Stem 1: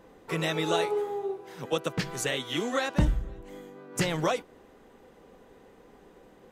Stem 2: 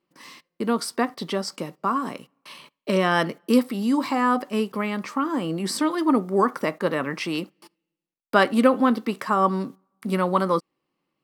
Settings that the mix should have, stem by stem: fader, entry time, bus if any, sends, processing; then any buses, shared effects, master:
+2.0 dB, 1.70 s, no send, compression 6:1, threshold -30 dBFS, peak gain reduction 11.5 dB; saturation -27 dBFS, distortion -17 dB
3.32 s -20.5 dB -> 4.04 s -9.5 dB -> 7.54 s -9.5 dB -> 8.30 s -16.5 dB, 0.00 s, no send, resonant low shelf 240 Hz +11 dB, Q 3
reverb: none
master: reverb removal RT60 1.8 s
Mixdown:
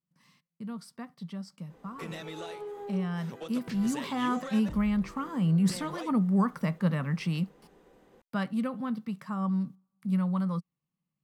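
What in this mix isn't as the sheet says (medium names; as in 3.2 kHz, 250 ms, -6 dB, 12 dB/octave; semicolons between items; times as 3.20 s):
stem 1 +2.0 dB -> -5.0 dB; master: missing reverb removal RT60 1.8 s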